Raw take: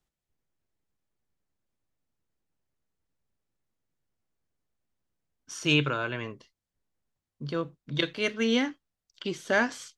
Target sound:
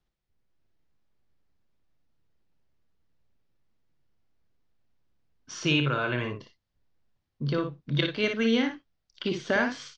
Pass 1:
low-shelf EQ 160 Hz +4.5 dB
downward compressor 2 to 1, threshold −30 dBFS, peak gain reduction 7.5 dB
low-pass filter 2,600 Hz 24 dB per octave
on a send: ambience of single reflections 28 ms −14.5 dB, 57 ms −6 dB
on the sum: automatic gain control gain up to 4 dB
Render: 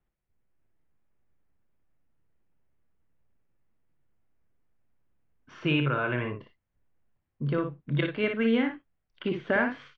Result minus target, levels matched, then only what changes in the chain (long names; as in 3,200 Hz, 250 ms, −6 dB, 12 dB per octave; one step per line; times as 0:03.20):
4,000 Hz band −6.5 dB
change: low-pass filter 5,400 Hz 24 dB per octave